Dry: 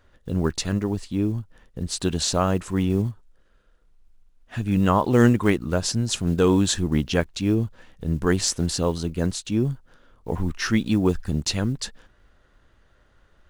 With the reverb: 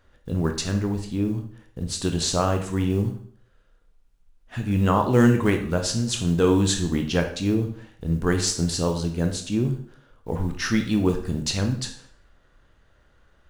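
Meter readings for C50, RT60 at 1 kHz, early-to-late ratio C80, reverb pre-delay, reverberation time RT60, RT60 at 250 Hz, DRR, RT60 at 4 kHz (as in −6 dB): 8.5 dB, 0.55 s, 12.0 dB, 18 ms, 0.55 s, 0.55 s, 5.0 dB, 0.50 s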